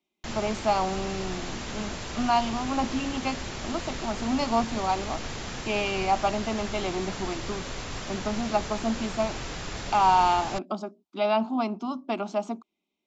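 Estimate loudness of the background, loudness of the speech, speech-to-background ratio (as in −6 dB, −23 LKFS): −35.5 LKFS, −28.5 LKFS, 7.0 dB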